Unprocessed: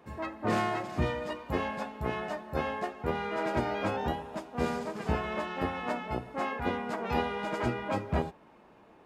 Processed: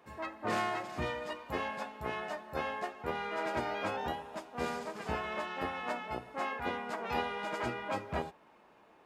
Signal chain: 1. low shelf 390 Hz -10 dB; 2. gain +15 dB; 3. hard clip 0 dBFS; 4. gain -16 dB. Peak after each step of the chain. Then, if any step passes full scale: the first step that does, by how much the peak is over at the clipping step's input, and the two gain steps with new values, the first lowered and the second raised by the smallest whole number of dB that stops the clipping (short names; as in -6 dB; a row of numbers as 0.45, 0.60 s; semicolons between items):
-18.5, -3.5, -3.5, -19.5 dBFS; no overload